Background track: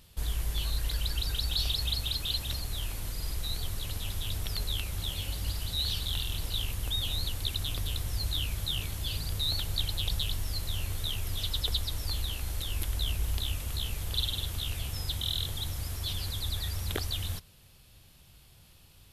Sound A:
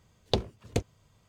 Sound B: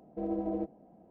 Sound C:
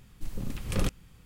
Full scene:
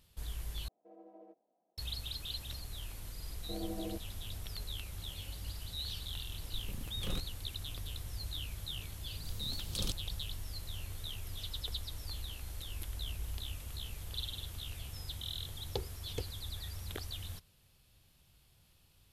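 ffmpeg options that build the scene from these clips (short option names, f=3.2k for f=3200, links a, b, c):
-filter_complex "[2:a]asplit=2[a][b];[3:a]asplit=2[c][d];[0:a]volume=-9.5dB[e];[a]highpass=500[f];[d]highshelf=f=2.8k:t=q:w=3:g=10[g];[1:a]aecho=1:1:2.3:0.65[h];[e]asplit=2[i][j];[i]atrim=end=0.684[k];[f]atrim=end=1.1,asetpts=PTS-STARTPTS,volume=-17dB[l];[j]atrim=start=1.776[m];[b]atrim=end=1.1,asetpts=PTS-STARTPTS,volume=-8dB,afade=t=in:d=0.004:c=hsin,afade=t=out:st=1.096:d=0.004:c=hsin,adelay=3320[n];[c]atrim=end=1.25,asetpts=PTS-STARTPTS,volume=-11.5dB,afade=t=in:d=0.004:c=hsin,afade=t=out:st=1.246:d=0.004:c=hsin,adelay=6310[o];[g]atrim=end=1.25,asetpts=PTS-STARTPTS,volume=-12.5dB,afade=t=in:d=0.004:c=hsin,afade=t=out:st=1.246:d=0.004:c=hsin,adelay=9030[p];[h]atrim=end=1.28,asetpts=PTS-STARTPTS,volume=-14dB,afade=t=in:d=0.004:c=hsin,afade=t=out:st=1.276:d=0.004:c=hsin,adelay=15420[q];[k][l]acrossfade=d=0.004:c1=hsin:c2=hsin[r];[r][m]acrossfade=d=0.004:c1=hsin:c2=hsin[s];[s][n][o][p][q]amix=inputs=5:normalize=0"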